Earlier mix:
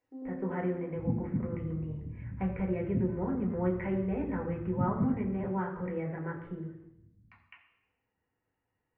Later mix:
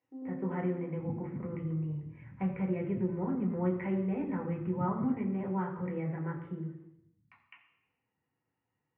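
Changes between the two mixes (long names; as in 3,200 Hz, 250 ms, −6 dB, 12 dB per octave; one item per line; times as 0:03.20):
second sound −9.5 dB
master: add loudspeaker in its box 110–7,400 Hz, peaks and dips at 140 Hz +7 dB, 450 Hz −4 dB, 640 Hz −4 dB, 1,600 Hz −5 dB, 4,500 Hz −6 dB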